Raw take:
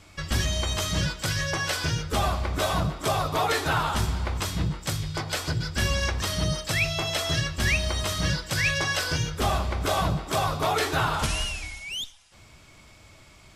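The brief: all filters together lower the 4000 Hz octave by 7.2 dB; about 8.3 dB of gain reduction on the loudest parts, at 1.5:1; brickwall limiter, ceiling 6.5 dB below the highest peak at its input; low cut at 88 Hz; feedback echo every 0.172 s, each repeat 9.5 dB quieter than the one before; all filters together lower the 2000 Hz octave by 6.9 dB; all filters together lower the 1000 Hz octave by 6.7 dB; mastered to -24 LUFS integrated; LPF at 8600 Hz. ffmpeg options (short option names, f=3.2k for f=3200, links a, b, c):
-af "highpass=88,lowpass=8.6k,equalizer=f=1k:t=o:g=-7.5,equalizer=f=2k:t=o:g=-4.5,equalizer=f=4k:t=o:g=-7.5,acompressor=threshold=-48dB:ratio=1.5,alimiter=level_in=7.5dB:limit=-24dB:level=0:latency=1,volume=-7.5dB,aecho=1:1:172|344|516|688:0.335|0.111|0.0365|0.012,volume=16.5dB"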